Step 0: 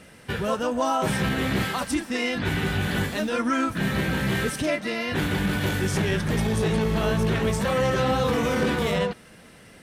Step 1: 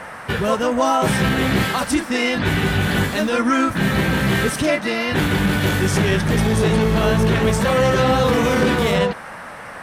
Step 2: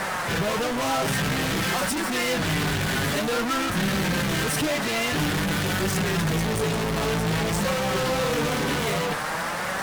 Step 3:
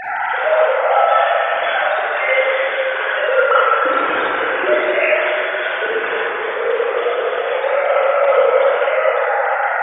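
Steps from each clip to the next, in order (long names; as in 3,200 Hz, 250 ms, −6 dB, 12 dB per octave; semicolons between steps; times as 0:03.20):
noise in a band 490–1,900 Hz −42 dBFS; level +6.5 dB
fuzz pedal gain 38 dB, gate −40 dBFS; flanger 0.51 Hz, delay 5.1 ms, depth 2.4 ms, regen +48%; level −6.5 dB
three sine waves on the formant tracks; convolution reverb RT60 3.5 s, pre-delay 33 ms, DRR −8.5 dB; level −1 dB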